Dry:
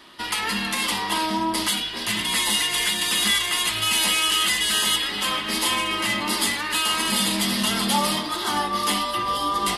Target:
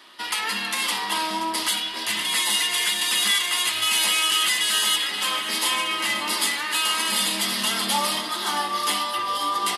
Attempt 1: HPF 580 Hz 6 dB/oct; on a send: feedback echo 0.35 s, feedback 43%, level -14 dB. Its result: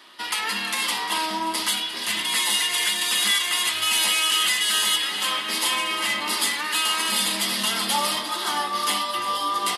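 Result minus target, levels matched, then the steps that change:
echo 0.178 s early
change: feedback echo 0.528 s, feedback 43%, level -14 dB

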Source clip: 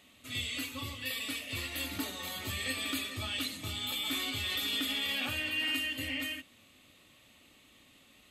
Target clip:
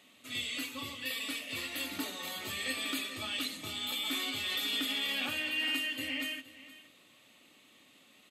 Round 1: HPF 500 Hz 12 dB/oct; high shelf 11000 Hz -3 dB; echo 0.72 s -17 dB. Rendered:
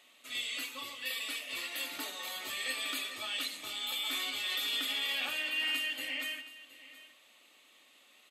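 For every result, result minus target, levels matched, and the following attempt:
echo 0.251 s late; 250 Hz band -9.5 dB
HPF 500 Hz 12 dB/oct; high shelf 11000 Hz -3 dB; echo 0.469 s -17 dB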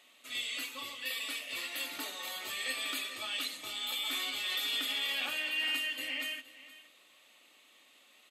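250 Hz band -9.5 dB
HPF 180 Hz 12 dB/oct; high shelf 11000 Hz -3 dB; echo 0.469 s -17 dB

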